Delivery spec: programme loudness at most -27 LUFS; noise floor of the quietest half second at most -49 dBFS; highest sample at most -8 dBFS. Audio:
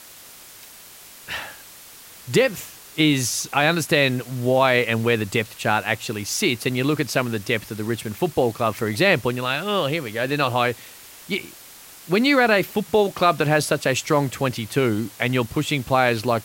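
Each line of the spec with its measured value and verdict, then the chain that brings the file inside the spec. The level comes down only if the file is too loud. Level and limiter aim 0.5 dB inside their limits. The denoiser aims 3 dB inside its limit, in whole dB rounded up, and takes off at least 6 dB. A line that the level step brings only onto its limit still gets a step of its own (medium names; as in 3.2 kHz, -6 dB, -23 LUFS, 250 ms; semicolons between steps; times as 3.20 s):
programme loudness -21.5 LUFS: fail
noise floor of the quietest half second -44 dBFS: fail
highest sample -4.5 dBFS: fail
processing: trim -6 dB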